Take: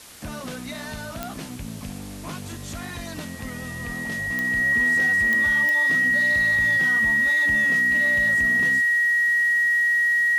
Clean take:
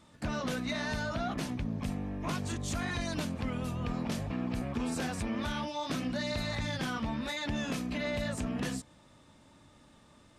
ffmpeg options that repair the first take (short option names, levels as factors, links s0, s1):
-af "adeclick=t=4,bandreject=f=1900:w=30,afwtdn=0.0071"